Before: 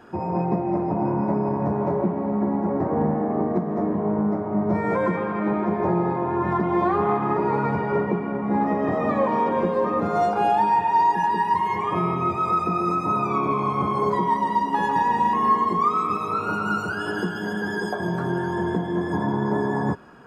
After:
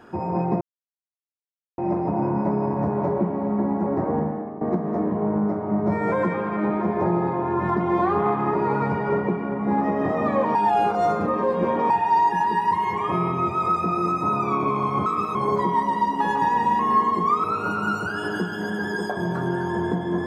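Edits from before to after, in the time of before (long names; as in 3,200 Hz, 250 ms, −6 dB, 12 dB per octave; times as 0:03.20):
0:00.61: splice in silence 1.17 s
0:02.90–0:03.44: fade out, to −15.5 dB
0:09.38–0:10.73: reverse
0:15.98–0:16.27: move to 0:13.89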